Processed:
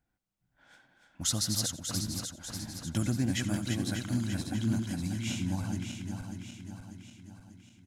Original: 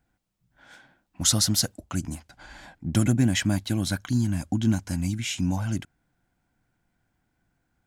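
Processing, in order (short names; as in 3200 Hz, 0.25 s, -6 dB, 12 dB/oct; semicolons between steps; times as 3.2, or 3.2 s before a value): regenerating reverse delay 0.296 s, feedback 71%, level -5 dB; feedback echo 87 ms, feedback 36%, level -18 dB; gain -8.5 dB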